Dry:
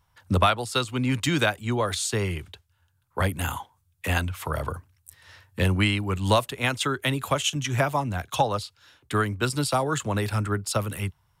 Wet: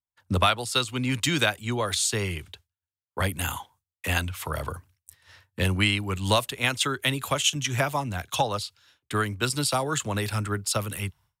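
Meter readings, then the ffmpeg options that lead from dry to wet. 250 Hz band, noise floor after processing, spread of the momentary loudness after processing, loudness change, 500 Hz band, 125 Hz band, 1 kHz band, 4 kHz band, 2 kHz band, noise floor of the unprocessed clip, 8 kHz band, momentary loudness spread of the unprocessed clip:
-2.5 dB, under -85 dBFS, 10 LU, -0.5 dB, -2.5 dB, -2.5 dB, -2.0 dB, +3.0 dB, +0.5 dB, -69 dBFS, +3.5 dB, 10 LU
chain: -af "agate=range=0.0224:threshold=0.00398:ratio=3:detection=peak,adynamicequalizer=threshold=0.0112:dfrequency=1900:dqfactor=0.7:tfrequency=1900:tqfactor=0.7:attack=5:release=100:ratio=0.375:range=3:mode=boostabove:tftype=highshelf,volume=0.75"

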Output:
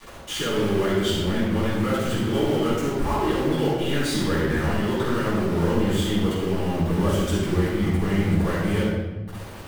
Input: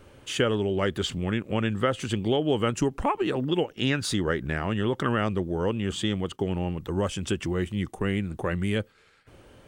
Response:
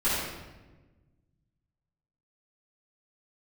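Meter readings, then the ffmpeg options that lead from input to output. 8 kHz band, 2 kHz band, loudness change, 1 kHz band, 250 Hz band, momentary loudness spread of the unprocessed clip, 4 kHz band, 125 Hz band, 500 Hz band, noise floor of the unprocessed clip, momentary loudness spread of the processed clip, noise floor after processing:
+3.0 dB, +2.5 dB, +4.0 dB, +3.0 dB, +5.0 dB, 4 LU, +2.5 dB, +5.0 dB, +3.5 dB, -57 dBFS, 3 LU, -37 dBFS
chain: -filter_complex "[0:a]bandreject=f=2600:w=9.2,alimiter=limit=0.0891:level=0:latency=1:release=235,areverse,acompressor=threshold=0.0126:ratio=12,areverse,aeval=exprs='val(0)*gte(abs(val(0)),0.00562)':c=same[s0];[1:a]atrim=start_sample=2205[s1];[s0][s1]afir=irnorm=-1:irlink=0,volume=1.88"

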